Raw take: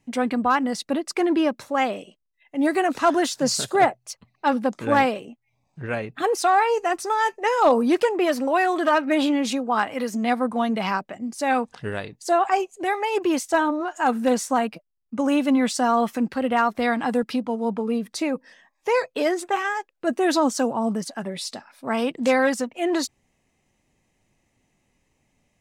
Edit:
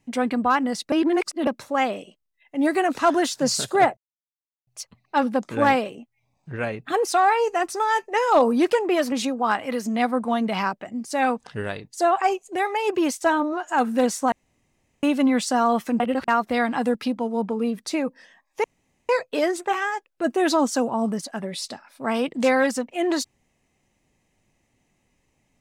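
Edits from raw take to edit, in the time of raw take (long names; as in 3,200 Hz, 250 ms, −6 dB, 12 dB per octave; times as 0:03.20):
0:00.92–0:01.47: reverse
0:03.97: splice in silence 0.70 s
0:08.42–0:09.40: remove
0:14.60–0:15.31: fill with room tone
0:16.28–0:16.56: reverse
0:18.92: splice in room tone 0.45 s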